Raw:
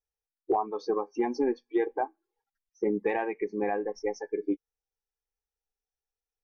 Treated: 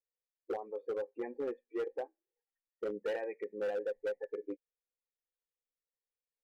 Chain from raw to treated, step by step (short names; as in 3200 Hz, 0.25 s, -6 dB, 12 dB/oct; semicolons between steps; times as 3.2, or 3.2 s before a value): vocal tract filter e; hard clip -33.5 dBFS, distortion -13 dB; gain +2.5 dB